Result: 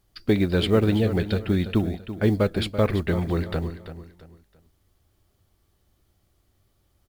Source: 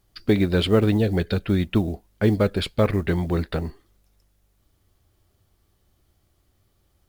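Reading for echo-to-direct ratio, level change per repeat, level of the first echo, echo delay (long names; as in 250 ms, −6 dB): −11.5 dB, −10.0 dB, −12.0 dB, 335 ms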